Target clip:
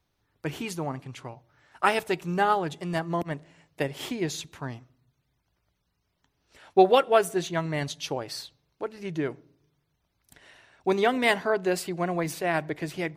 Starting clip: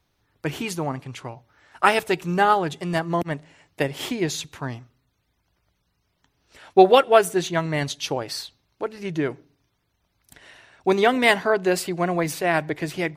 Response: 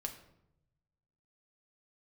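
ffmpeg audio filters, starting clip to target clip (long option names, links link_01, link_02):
-filter_complex "[0:a]asplit=2[link_01][link_02];[1:a]atrim=start_sample=2205,lowpass=1400[link_03];[link_02][link_03]afir=irnorm=-1:irlink=0,volume=-17dB[link_04];[link_01][link_04]amix=inputs=2:normalize=0,volume=-5.5dB"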